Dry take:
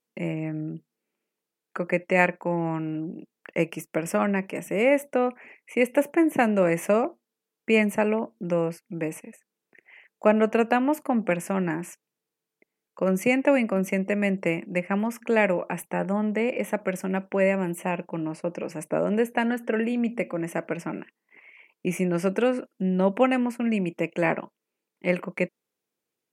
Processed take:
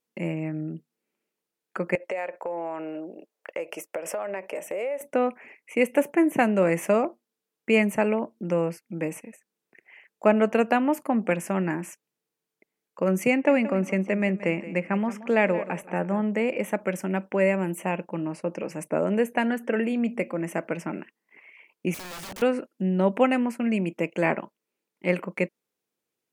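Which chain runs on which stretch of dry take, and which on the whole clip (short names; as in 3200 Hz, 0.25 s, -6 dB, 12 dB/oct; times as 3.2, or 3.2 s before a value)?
1.95–5.01 HPF 460 Hz + bell 580 Hz +10.5 dB 0.99 oct + compressor 8:1, threshold -27 dBFS
13.3–16.22 air absorption 59 m + feedback echo 0.176 s, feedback 27%, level -15.5 dB
21.94–22.42 compressor 2.5:1, threshold -32 dBFS + wrapped overs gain 33.5 dB
whole clip: dry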